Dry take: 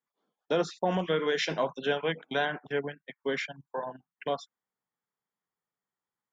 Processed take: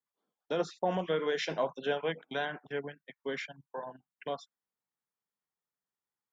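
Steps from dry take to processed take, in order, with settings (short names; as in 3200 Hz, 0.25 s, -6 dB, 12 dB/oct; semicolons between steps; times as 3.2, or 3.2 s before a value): 0.59–2.2 dynamic EQ 630 Hz, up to +4 dB, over -41 dBFS, Q 0.96; gain -5.5 dB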